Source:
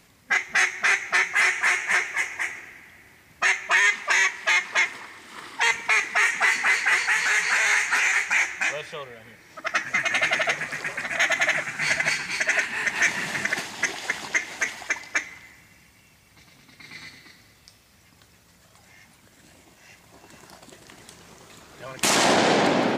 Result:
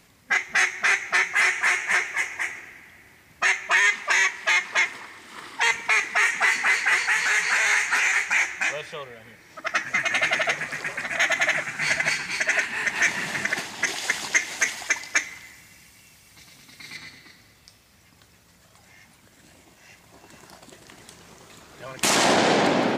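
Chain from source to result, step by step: 13.87–16.97 bell 9300 Hz +7.5 dB 2.8 oct

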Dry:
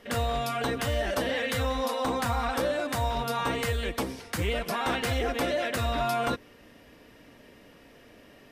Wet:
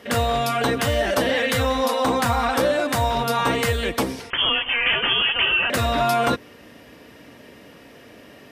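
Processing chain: HPF 76 Hz; 4.3–5.7 inverted band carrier 3300 Hz; gain +8 dB

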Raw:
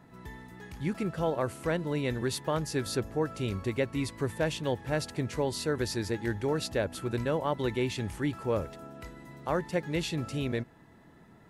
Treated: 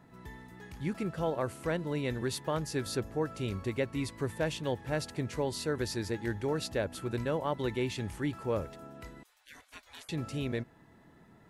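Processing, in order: 9.23–10.09 spectral gate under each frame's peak -25 dB weak; gain -2.5 dB

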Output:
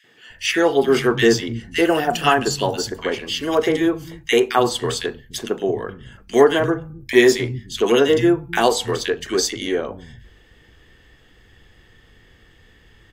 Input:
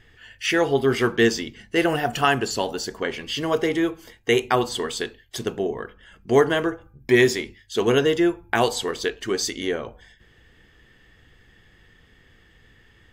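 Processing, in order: three bands offset in time highs, mids, lows 40/300 ms, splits 170/1800 Hz; gain +4.5 dB

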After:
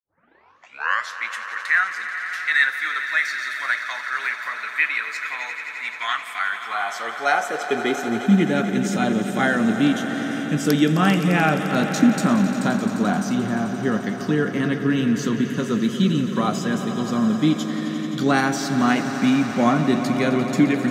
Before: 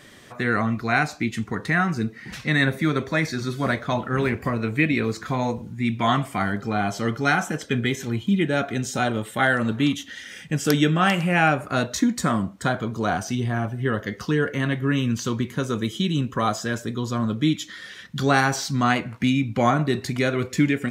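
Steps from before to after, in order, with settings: tape start at the beginning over 1.27 s; high-pass sweep 1600 Hz -> 200 Hz, 6.39–8.37; swelling echo 87 ms, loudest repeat 5, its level -14 dB; gain -1.5 dB

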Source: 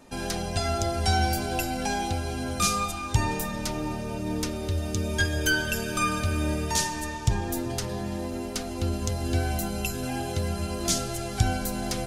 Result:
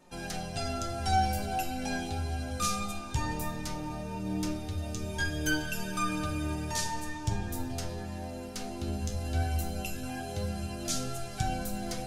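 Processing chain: shoebox room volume 110 m³, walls mixed, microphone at 0.48 m; flange 0.17 Hz, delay 5.4 ms, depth 9.5 ms, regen +42%; gain -4 dB

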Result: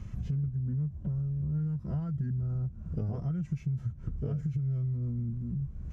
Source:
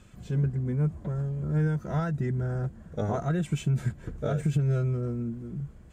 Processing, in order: formant shift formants -3 st; tone controls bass +15 dB, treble -4 dB; compressor 5:1, threshold -32 dBFS, peak gain reduction 20.5 dB

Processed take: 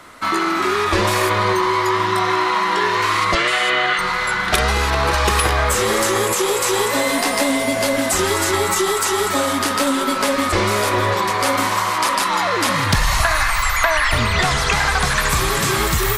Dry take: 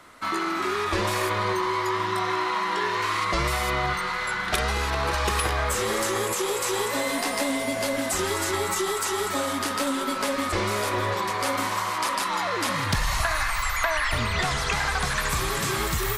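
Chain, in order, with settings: 3.35–3.99 speaker cabinet 330–9000 Hz, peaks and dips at 960 Hz -8 dB, 1700 Hz +7 dB, 3000 Hz +8 dB, 5500 Hz -7 dB, 8200 Hz -3 dB; gain +8 dB

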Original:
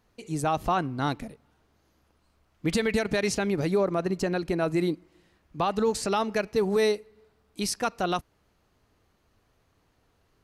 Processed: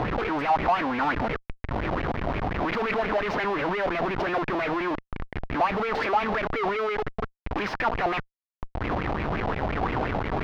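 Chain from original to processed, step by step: three-band isolator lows -23 dB, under 260 Hz, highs -16 dB, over 2500 Hz; in parallel at +1 dB: upward compressor, threshold -28 dBFS; on the sum: tube stage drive 31 dB, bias 0.65; Schmitt trigger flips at -47 dBFS; air absorption 280 m; LFO bell 5.7 Hz 700–2400 Hz +14 dB; gain +8.5 dB

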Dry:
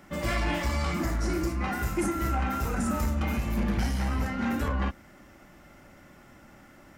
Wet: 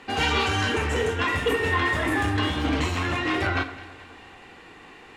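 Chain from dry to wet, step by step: LPF 4000 Hz 12 dB/oct; low shelf 280 Hz -10 dB; echo with dull and thin repeats by turns 0.144 s, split 900 Hz, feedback 71%, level -14 dB; on a send at -11.5 dB: reverb RT60 0.60 s, pre-delay 28 ms; on the sum: speed mistake 33 rpm record played at 45 rpm; gain +8.5 dB

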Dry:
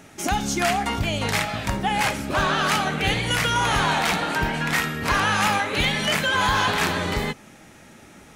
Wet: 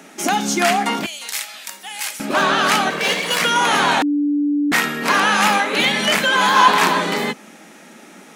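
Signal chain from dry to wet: 2.9–3.41 minimum comb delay 1.8 ms; 6.56–7.01 bell 1000 Hz +9.5 dB 0.29 oct; steep high-pass 180 Hz 48 dB/oct; 1.06–2.2 differentiator; 4.02–4.72 bleep 291 Hz -20.5 dBFS; gain +5.5 dB

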